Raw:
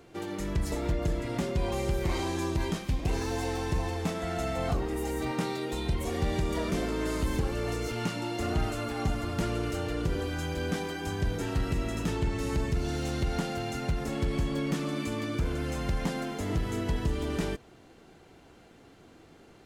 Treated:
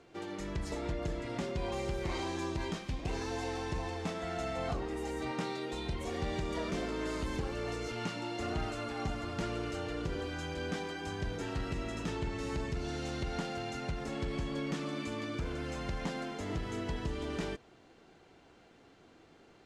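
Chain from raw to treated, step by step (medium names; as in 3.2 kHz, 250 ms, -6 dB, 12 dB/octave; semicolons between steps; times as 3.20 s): low-pass 6.9 kHz 12 dB/octave; bass shelf 240 Hz -5.5 dB; trim -3.5 dB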